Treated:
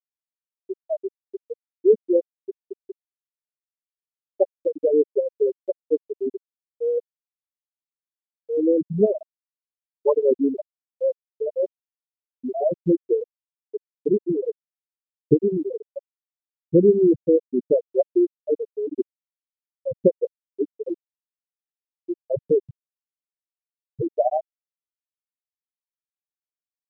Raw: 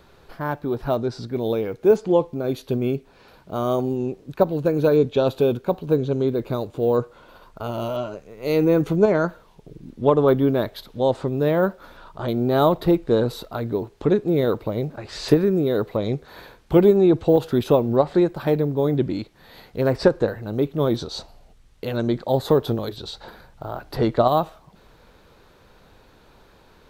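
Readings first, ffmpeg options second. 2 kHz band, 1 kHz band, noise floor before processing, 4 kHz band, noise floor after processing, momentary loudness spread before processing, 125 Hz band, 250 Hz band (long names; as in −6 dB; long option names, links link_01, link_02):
below −40 dB, −10.5 dB, −53 dBFS, below −40 dB, below −85 dBFS, 13 LU, −11.5 dB, −4.0 dB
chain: -af "afftfilt=real='re*gte(hypot(re,im),0.891)':imag='im*gte(hypot(re,im),0.891)':win_size=1024:overlap=0.75,aexciter=amount=6.6:drive=5.2:freq=2400"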